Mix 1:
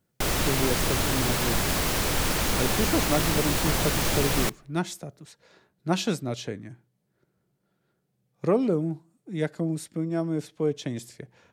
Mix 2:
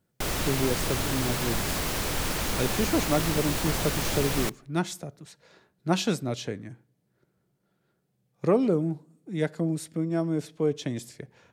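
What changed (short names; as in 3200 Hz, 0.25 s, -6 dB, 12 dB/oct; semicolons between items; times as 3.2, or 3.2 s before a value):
speech: send on; background -3.5 dB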